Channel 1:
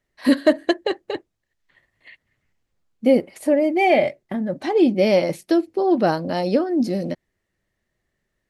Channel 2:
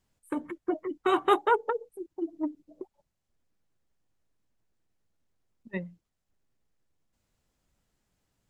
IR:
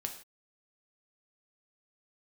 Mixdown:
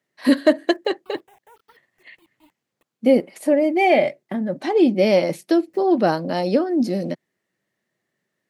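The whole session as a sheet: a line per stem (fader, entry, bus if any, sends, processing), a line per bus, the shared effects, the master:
+0.5 dB, 0.00 s, no send, high-pass filter 140 Hz 24 dB per octave
−19.0 dB, 0.00 s, no send, brickwall limiter −19.5 dBFS, peak gain reduction 8.5 dB; bit-depth reduction 6 bits, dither none; step-sequenced phaser 3.2 Hz 830–2,100 Hz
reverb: not used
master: no processing

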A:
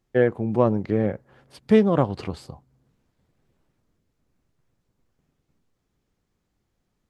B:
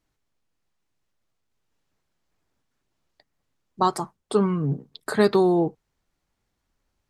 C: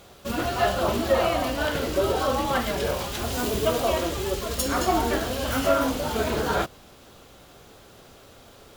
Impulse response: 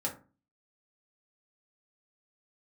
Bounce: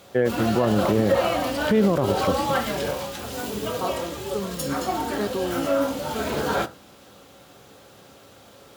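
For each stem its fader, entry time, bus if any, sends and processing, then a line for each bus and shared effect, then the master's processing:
+1.0 dB, 0.00 s, no send, automatic gain control
−10.0 dB, 0.00 s, no send, no processing
−2.0 dB, 0.00 s, send −9 dB, automatic ducking −7 dB, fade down 0.40 s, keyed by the second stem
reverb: on, RT60 0.35 s, pre-delay 3 ms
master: high-pass filter 95 Hz 12 dB per octave; brickwall limiter −10.5 dBFS, peak gain reduction 11.5 dB

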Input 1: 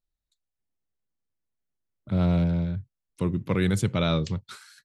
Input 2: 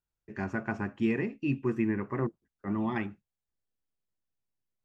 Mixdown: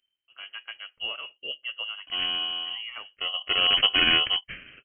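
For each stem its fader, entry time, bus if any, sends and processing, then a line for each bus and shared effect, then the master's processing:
+2.5 dB, 0.00 s, no send, sample-rate reduction 2,200 Hz, jitter 0%; high-shelf EQ 2,200 Hz +11.5 dB; automatic ducking −10 dB, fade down 0.35 s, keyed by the second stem
−5.0 dB, 0.00 s, no send, high-shelf EQ 2,500 Hz +6.5 dB; expander for the loud parts 1.5 to 1, over −47 dBFS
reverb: not used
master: voice inversion scrambler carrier 3,100 Hz

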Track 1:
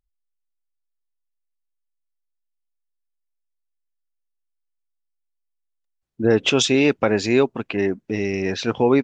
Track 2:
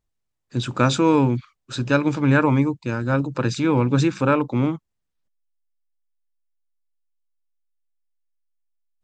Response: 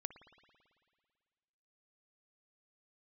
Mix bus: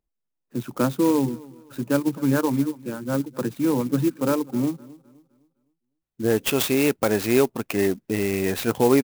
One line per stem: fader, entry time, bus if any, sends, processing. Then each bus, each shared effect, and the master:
−2.0 dB, 0.00 s, no send, no echo send, speech leveller 2 s
−5.5 dB, 0.00 s, no send, echo send −21.5 dB, Bessel high-pass filter 270 Hz, order 8; reverb reduction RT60 1.1 s; spectral tilt −4.5 dB per octave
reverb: not used
echo: repeating echo 256 ms, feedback 35%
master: converter with an unsteady clock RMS 0.049 ms

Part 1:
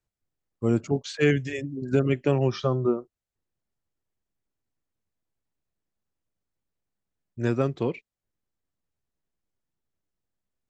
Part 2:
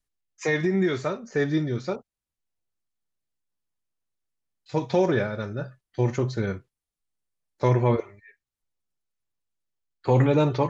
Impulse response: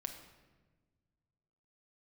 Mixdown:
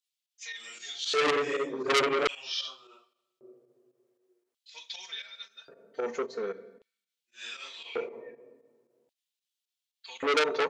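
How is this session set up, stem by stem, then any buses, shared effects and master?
0.0 dB, 0.00 s, send −7.5 dB, random phases in long frames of 200 ms
−8.0 dB, 0.00 s, send −7 dB, comb filter 4.4 ms, depth 97%; automatic ducking −16 dB, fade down 1.60 s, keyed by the first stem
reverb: on, RT60 1.3 s, pre-delay 5 ms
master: fake sidechain pumping 115 BPM, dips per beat 2, −10 dB, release 82 ms; auto-filter high-pass square 0.44 Hz 450–3,300 Hz; saturating transformer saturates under 3,800 Hz

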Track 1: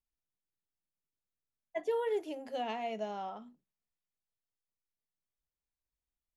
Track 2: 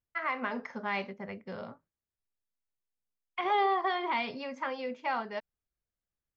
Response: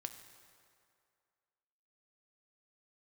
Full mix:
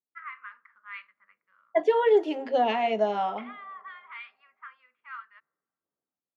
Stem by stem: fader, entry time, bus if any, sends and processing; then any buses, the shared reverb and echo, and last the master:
+1.5 dB, 0.00 s, send −10.5 dB, high-pass filter 110 Hz; automatic gain control gain up to 11 dB; auto-filter notch sine 2.4 Hz 360–2,700 Hz
−2.0 dB, 0.00 s, send −21 dB, elliptic high-pass filter 1,200 Hz, stop band 40 dB; speech leveller within 4 dB 2 s; automatic ducking −7 dB, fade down 0.40 s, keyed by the first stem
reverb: on, RT60 2.3 s, pre-delay 4 ms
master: low-pass that shuts in the quiet parts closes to 670 Hz, open at −23.5 dBFS; band-pass filter 240–3,300 Hz

